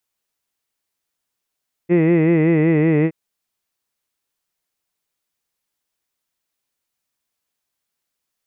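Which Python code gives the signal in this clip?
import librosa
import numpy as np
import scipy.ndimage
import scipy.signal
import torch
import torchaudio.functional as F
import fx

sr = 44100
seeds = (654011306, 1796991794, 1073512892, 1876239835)

y = fx.vowel(sr, seeds[0], length_s=1.22, word='hid', hz=168.0, glide_st=-1.5, vibrato_hz=5.3, vibrato_st=0.9)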